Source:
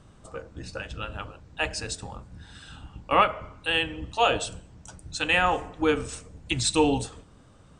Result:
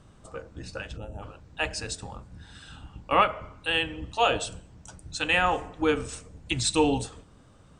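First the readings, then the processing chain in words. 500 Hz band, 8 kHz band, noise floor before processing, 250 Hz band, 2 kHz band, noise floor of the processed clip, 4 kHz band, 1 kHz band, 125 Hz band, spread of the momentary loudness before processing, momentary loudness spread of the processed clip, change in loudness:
-1.0 dB, -1.0 dB, -54 dBFS, -1.0 dB, -1.0 dB, -55 dBFS, -1.0 dB, -1.0 dB, -1.0 dB, 22 LU, 21 LU, -1.0 dB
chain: time-frequency box 0.97–1.22 s, 910–5600 Hz -18 dB; trim -1 dB

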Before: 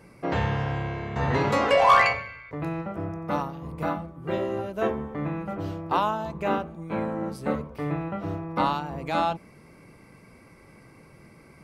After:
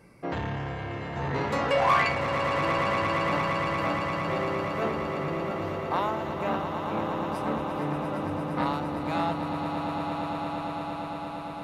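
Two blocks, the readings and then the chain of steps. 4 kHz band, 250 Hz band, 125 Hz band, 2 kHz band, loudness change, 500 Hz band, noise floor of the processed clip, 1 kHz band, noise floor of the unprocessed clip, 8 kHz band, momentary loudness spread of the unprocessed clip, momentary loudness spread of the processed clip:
0.0 dB, -0.5 dB, -2.0 dB, -0.5 dB, -2.0 dB, -1.0 dB, -36 dBFS, -1.5 dB, -52 dBFS, no reading, 12 LU, 8 LU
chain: echo with a slow build-up 115 ms, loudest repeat 8, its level -10 dB; transformer saturation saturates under 920 Hz; trim -3.5 dB

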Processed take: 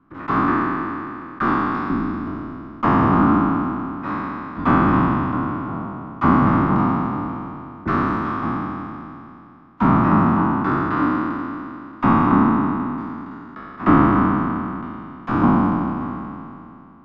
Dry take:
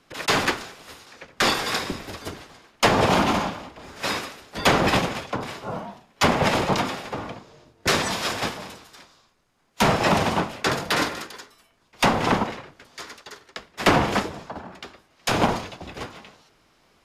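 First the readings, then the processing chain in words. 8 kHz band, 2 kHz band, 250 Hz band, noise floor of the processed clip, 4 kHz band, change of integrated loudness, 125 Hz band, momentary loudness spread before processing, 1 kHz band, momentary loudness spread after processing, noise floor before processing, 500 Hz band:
under -30 dB, -2.5 dB, +10.5 dB, -42 dBFS, under -15 dB, +3.5 dB, +7.5 dB, 20 LU, +5.0 dB, 16 LU, -62 dBFS, -2.0 dB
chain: spectral sustain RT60 2.68 s; resonant low-pass 1.2 kHz, resonance Q 4.5; resonant low shelf 380 Hz +8.5 dB, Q 3; trim -8.5 dB

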